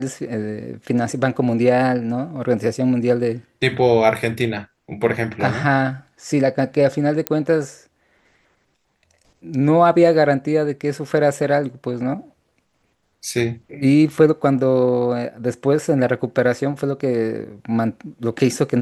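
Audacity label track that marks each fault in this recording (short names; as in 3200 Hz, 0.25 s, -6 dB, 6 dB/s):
7.270000	7.270000	pop -4 dBFS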